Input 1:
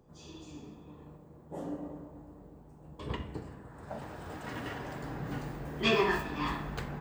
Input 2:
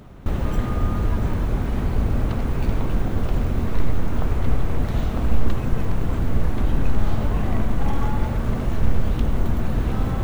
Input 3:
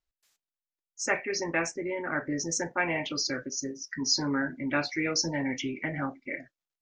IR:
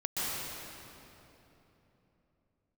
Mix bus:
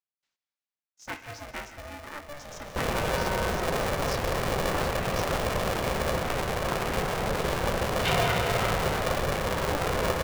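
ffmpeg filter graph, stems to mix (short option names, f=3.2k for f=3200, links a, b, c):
-filter_complex "[0:a]adelay=2200,volume=-3dB,asplit=2[a][b];[b]volume=-4.5dB[c];[1:a]adelay=2500,volume=2.5dB[d];[2:a]volume=-10.5dB,asplit=2[e][f];[f]volume=-13.5dB[g];[3:a]atrim=start_sample=2205[h];[c][g]amix=inputs=2:normalize=0[i];[i][h]afir=irnorm=-1:irlink=0[j];[a][d][e][j]amix=inputs=4:normalize=0,highpass=210,lowpass=4.2k,aeval=exprs='val(0)*sgn(sin(2*PI*290*n/s))':c=same"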